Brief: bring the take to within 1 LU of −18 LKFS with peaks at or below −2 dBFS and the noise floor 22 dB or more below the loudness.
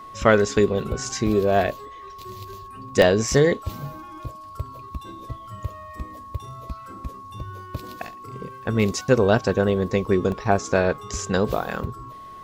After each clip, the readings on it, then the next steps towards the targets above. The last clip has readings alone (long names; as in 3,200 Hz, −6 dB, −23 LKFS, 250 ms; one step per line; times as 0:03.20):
number of dropouts 3; longest dropout 1.2 ms; interfering tone 1,100 Hz; level of the tone −38 dBFS; integrated loudness −21.5 LKFS; sample peak −2.5 dBFS; target loudness −18.0 LKFS
→ repair the gap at 0:01.28/0:03.02/0:10.32, 1.2 ms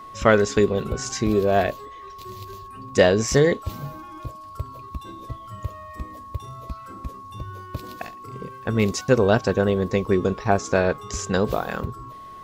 number of dropouts 0; interfering tone 1,100 Hz; level of the tone −38 dBFS
→ notch filter 1,100 Hz, Q 30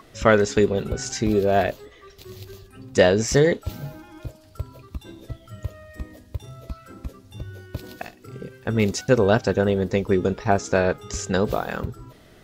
interfering tone none found; integrated loudness −21.5 LKFS; sample peak −3.0 dBFS; target loudness −18.0 LKFS
→ level +3.5 dB
brickwall limiter −2 dBFS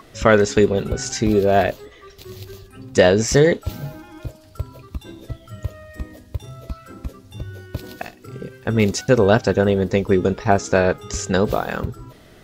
integrated loudness −18.5 LKFS; sample peak −2.0 dBFS; background noise floor −47 dBFS